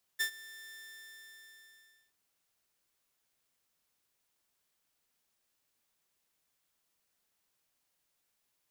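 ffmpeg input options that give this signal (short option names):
-f lavfi -i "aevalsrc='0.0596*(2*mod(1780*t,1)-1)':d=1.94:s=44100,afade=t=in:d=0.019,afade=t=out:st=0.019:d=0.092:silence=0.0944,afade=t=out:st=0.54:d=1.4"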